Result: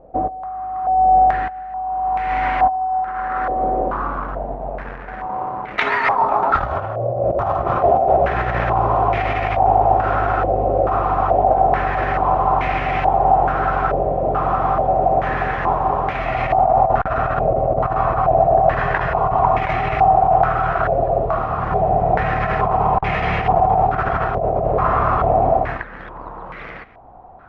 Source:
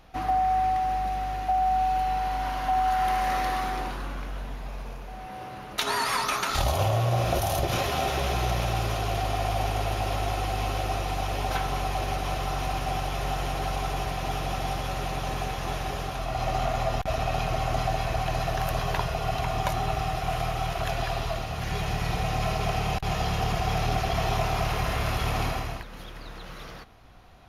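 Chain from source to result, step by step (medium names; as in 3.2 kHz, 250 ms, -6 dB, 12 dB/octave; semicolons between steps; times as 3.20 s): peaking EQ 530 Hz +6 dB 3 oct; in parallel at -8.5 dB: bit crusher 5-bit; on the sum: compressor with a negative ratio -21 dBFS, ratio -0.5; step-sequenced low-pass 2.3 Hz 570–2100 Hz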